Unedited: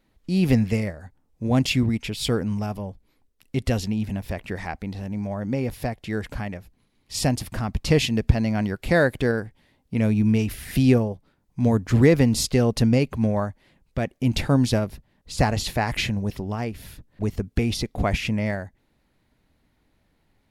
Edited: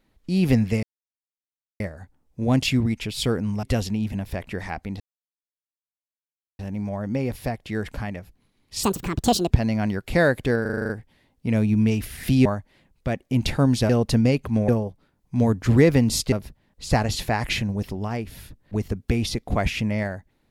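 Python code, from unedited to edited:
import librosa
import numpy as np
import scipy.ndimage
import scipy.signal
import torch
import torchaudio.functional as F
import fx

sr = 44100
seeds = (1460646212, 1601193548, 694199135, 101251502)

y = fx.edit(x, sr, fx.insert_silence(at_s=0.83, length_s=0.97),
    fx.cut(start_s=2.66, length_s=0.94),
    fx.insert_silence(at_s=4.97, length_s=1.59),
    fx.speed_span(start_s=7.21, length_s=1.05, speed=1.56),
    fx.stutter(start_s=9.37, slice_s=0.04, count=8),
    fx.swap(start_s=10.93, length_s=1.64, other_s=13.36, other_length_s=1.44), tone=tone)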